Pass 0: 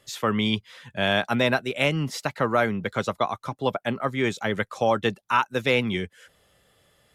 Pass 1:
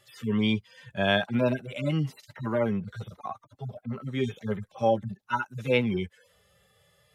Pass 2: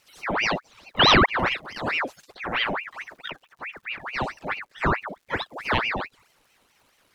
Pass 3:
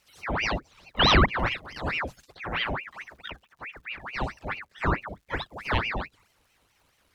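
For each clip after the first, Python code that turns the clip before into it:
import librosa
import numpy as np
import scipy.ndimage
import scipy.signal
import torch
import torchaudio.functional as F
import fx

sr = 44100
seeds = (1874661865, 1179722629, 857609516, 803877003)

y1 = fx.hpss_only(x, sr, part='harmonic')
y2 = fx.spec_paint(y1, sr, seeds[0], shape='fall', start_s=0.99, length_s=0.27, low_hz=520.0, high_hz=2400.0, level_db=-16.0)
y2 = fx.dmg_crackle(y2, sr, seeds[1], per_s=380.0, level_db=-55.0)
y2 = fx.ring_lfo(y2, sr, carrier_hz=1500.0, swing_pct=75, hz=4.6)
y2 = F.gain(torch.from_numpy(y2), 3.0).numpy()
y3 = fx.octave_divider(y2, sr, octaves=2, level_db=4.0)
y3 = F.gain(torch.from_numpy(y3), -4.0).numpy()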